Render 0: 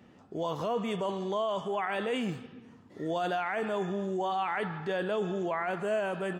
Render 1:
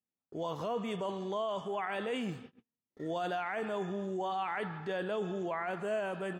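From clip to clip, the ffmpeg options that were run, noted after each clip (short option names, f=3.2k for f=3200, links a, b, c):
-af "agate=range=-39dB:threshold=-45dB:ratio=16:detection=peak,volume=-4dB"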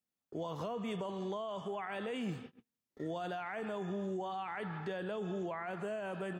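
-filter_complex "[0:a]acrossover=split=190[a][b];[b]acompressor=threshold=-38dB:ratio=6[c];[a][c]amix=inputs=2:normalize=0,volume=1dB"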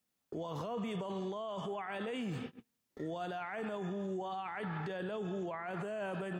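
-af "alimiter=level_in=15.5dB:limit=-24dB:level=0:latency=1:release=31,volume=-15.5dB,volume=7.5dB"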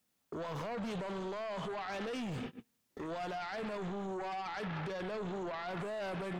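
-af "aeval=exprs='0.0266*sin(PI/2*1.78*val(0)/0.0266)':c=same,volume=-4.5dB"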